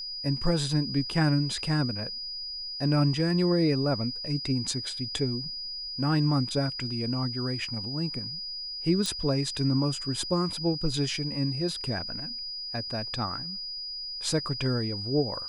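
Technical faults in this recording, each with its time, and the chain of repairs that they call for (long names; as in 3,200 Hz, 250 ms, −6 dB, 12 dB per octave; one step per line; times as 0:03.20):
whistle 4,900 Hz −34 dBFS
0:09.06: click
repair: click removal
notch filter 4,900 Hz, Q 30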